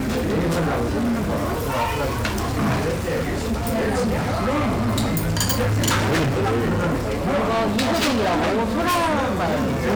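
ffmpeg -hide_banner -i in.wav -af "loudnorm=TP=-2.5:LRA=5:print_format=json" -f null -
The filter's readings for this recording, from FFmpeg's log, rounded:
"input_i" : "-21.4",
"input_tp" : "-10.5",
"input_lra" : "1.9",
"input_thresh" : "-31.4",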